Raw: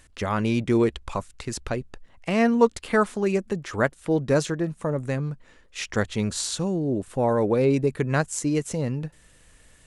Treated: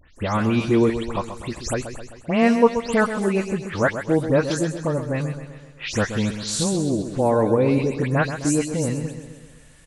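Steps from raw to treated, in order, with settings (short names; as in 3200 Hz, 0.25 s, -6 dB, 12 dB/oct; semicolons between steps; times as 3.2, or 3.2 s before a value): spectral delay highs late, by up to 0.162 s; feedback echo 0.13 s, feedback 56%, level -10 dB; gain +3 dB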